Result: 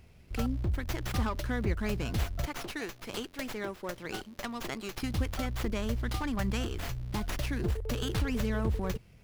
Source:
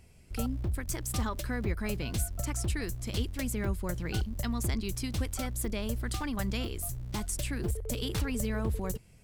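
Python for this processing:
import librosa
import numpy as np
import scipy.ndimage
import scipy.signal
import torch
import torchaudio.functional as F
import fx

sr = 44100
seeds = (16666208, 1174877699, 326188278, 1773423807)

y = fx.highpass(x, sr, hz=360.0, slope=12, at=(2.46, 5.03))
y = fx.running_max(y, sr, window=5)
y = y * 10.0 ** (1.5 / 20.0)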